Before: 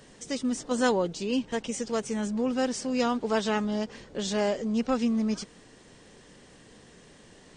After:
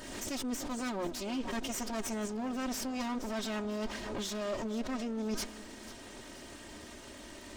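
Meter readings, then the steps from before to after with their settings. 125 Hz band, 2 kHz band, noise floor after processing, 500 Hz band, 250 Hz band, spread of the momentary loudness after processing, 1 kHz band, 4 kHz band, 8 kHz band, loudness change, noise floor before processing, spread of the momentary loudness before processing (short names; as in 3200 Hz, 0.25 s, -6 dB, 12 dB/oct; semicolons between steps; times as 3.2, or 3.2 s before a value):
-8.0 dB, -6.5 dB, -49 dBFS, -10.0 dB, -8.0 dB, 12 LU, -7.5 dB, -4.5 dB, -2.5 dB, -8.0 dB, -54 dBFS, 7 LU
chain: minimum comb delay 3.2 ms; reverse; compressor 10:1, threshold -40 dBFS, peak gain reduction 18 dB; reverse; split-band echo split 750 Hz, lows 0.278 s, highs 0.486 s, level -16 dB; backwards sustainer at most 36 dB/s; gain +6 dB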